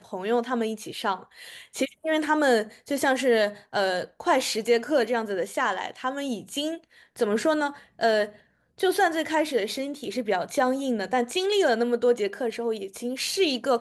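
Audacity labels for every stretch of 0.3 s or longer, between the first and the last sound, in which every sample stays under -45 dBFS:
8.390000	8.780000	silence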